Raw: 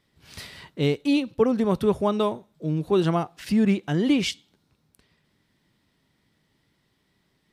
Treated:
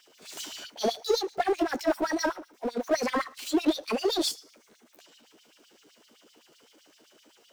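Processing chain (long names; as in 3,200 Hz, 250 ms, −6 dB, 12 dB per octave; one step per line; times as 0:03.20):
pitch shift by two crossfaded delay taps +7.5 semitones
auto-filter high-pass sine 7.8 Hz 280–4,300 Hz
power curve on the samples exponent 0.7
level −8 dB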